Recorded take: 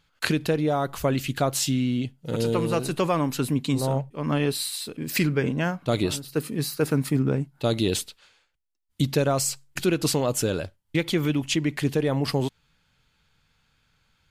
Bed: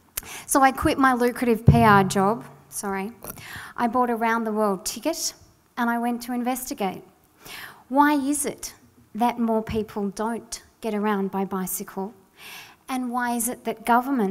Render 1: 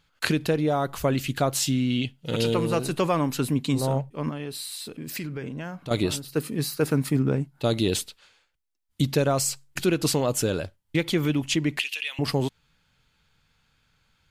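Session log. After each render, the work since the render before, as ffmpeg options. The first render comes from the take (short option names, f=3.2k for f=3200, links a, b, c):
-filter_complex "[0:a]asettb=1/sr,asplit=3[a][b][c];[a]atrim=end=1.904[d];[b]atrim=start=1.9:end=2.54,asetpts=PTS-STARTPTS,afade=t=in:d=0.004:c=qsin,afade=t=out:st=0.636:d=0.004:c=qsin,equalizer=f=3k:w=1.2:g=10.5[e];[c]atrim=start=2.536[f];[d][e]acrossfade=d=0.004:c1=hsin:c2=qsin[g];[g][f]acrossfade=d=0.004:c1=qsin:c2=hsin,asettb=1/sr,asplit=3[h][i][j];[h]atrim=end=4.294[k];[i]atrim=start=4.29:end=5.91,asetpts=PTS-STARTPTS,afade=t=in:d=0.004:c=qsin,afade=t=out:st=1.616:d=0.004:c=qsin,acompressor=threshold=-33dB:ratio=3:attack=3.2:release=140:knee=1:detection=peak[l];[j]atrim=start=5.906[m];[k][l]acrossfade=d=0.004:c1=hsin:c2=qsin[n];[n][m]acrossfade=d=0.004:c1=qsin:c2=hsin,asettb=1/sr,asplit=3[o][p][q];[o]atrim=end=11.794[r];[p]atrim=start=11.79:end=12.19,asetpts=PTS-STARTPTS,afade=t=in:d=0.004:c=qsin,afade=t=out:st=0.396:d=0.004:c=qsin,highpass=f=2.7k:t=q:w=7.1[s];[q]atrim=start=12.186[t];[r][s]acrossfade=d=0.004:c1=hsin:c2=qsin[u];[u][t]acrossfade=d=0.004:c1=qsin:c2=hsin"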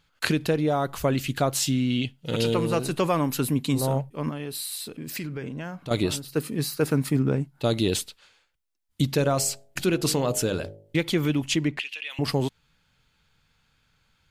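-filter_complex "[0:a]asettb=1/sr,asplit=3[a][b][c];[a]atrim=end=3.064[d];[b]atrim=start=3.06:end=4.85,asetpts=PTS-STARTPTS,afade=t=in:d=0.004:c=qsin,afade=t=out:st=1.786:d=0.004:c=qsin,equalizer=f=12k:t=o:w=0.54:g=7.5[e];[c]atrim=start=4.846[f];[d][e]acrossfade=d=0.004:c1=hsin:c2=qsin[g];[g][f]acrossfade=d=0.004:c1=qsin:c2=hsin,asettb=1/sr,asplit=3[h][i][j];[h]atrim=end=9.104[k];[i]atrim=start=9.1:end=10.96,asetpts=PTS-STARTPTS,afade=t=in:d=0.004:c=qsin,afade=t=out:st=1.856:d=0.004:c=qsin,bandreject=f=51.39:t=h:w=4,bandreject=f=102.78:t=h:w=4,bandreject=f=154.17:t=h:w=4,bandreject=f=205.56:t=h:w=4,bandreject=f=256.95:t=h:w=4,bandreject=f=308.34:t=h:w=4,bandreject=f=359.73:t=h:w=4,bandreject=f=411.12:t=h:w=4,bandreject=f=462.51:t=h:w=4,bandreject=f=513.9:t=h:w=4,bandreject=f=565.29:t=h:w=4,bandreject=f=616.68:t=h:w=4,bandreject=f=668.07:t=h:w=4,bandreject=f=719.46:t=h:w=4,bandreject=f=770.85:t=h:w=4,bandreject=f=822.24:t=h:w=4,bandreject=f=873.63:t=h:w=4[l];[j]atrim=start=10.956[m];[k][l]acrossfade=d=0.004:c1=hsin:c2=qsin[n];[n][m]acrossfade=d=0.004:c1=qsin:c2=hsin,asplit=3[o][p][q];[o]afade=t=out:st=11.67:d=0.02[r];[p]aemphasis=mode=reproduction:type=75kf,afade=t=in:st=11.67:d=0.02,afade=t=out:st=12.09:d=0.02[s];[q]afade=t=in:st=12.09:d=0.02[t];[r][s][t]amix=inputs=3:normalize=0"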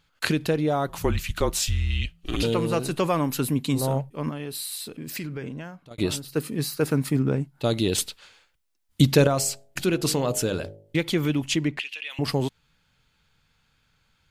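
-filter_complex "[0:a]asettb=1/sr,asplit=3[a][b][c];[a]atrim=end=0.894[d];[b]atrim=start=0.89:end=2.43,asetpts=PTS-STARTPTS,afade=t=in:d=0.004:c=qsin,afade=t=out:st=1.536:d=0.004:c=qsin,afreqshift=-170[e];[c]atrim=start=2.426[f];[d][e]acrossfade=d=0.004:c1=hsin:c2=qsin[g];[g][f]acrossfade=d=0.004:c1=qsin:c2=hsin,asplit=4[h][i][j][k];[h]atrim=end=5.98,asetpts=PTS-STARTPTS,afade=t=out:st=5.51:d=0.47[l];[i]atrim=start=5.98:end=7.982,asetpts=PTS-STARTPTS,afade=t=in:d=0.004:c=hsin[m];[j]atrim=start=7.978:end=9.272,asetpts=PTS-STARTPTS,volume=6dB[n];[k]atrim=start=9.268[o];[l][m]concat=n=2:v=0:a=1[p];[p][n]acrossfade=d=0.004:c1=hsin:c2=hsin[q];[q][o]acrossfade=d=0.004:c1=hsin:c2=hsin"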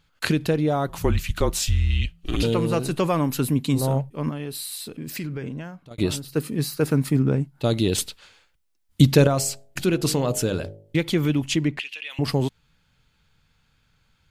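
-af "lowshelf=f=270:g=4.5"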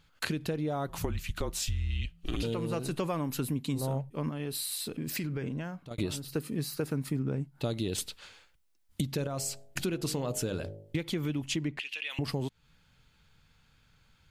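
-af "alimiter=limit=-11dB:level=0:latency=1:release=461,acompressor=threshold=-32dB:ratio=3"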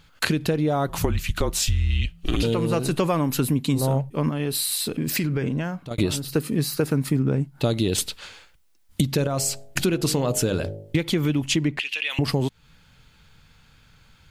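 -af "volume=10dB"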